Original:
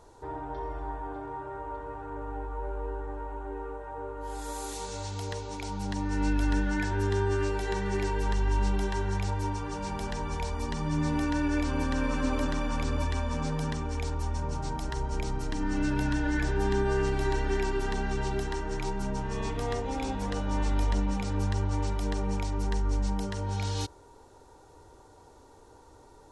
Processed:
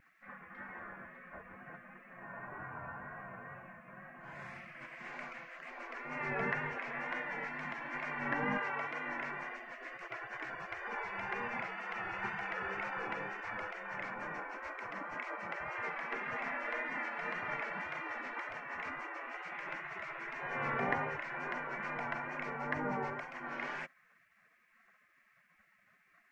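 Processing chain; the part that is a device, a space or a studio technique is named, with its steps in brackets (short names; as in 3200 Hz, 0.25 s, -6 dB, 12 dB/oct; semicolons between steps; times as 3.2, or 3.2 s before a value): spectral gate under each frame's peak -25 dB weak; 8.57–9.06 HPF 840 Hz -> 270 Hz 6 dB/oct; cassette deck with a dirty head (tape spacing loss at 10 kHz 36 dB; wow and flutter; white noise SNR 36 dB); resonant high shelf 2800 Hz -9 dB, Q 3; gain +11.5 dB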